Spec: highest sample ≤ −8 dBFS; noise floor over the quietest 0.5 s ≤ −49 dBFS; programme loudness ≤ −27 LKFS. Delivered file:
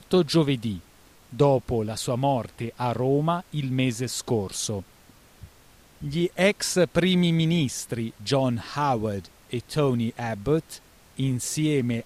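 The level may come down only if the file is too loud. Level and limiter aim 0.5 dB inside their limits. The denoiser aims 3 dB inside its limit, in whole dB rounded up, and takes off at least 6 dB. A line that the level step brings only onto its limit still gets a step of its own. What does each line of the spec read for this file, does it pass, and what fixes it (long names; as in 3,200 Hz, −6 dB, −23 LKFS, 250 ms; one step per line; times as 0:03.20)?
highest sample −7.5 dBFS: out of spec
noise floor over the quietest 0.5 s −54 dBFS: in spec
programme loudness −25.5 LKFS: out of spec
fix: level −2 dB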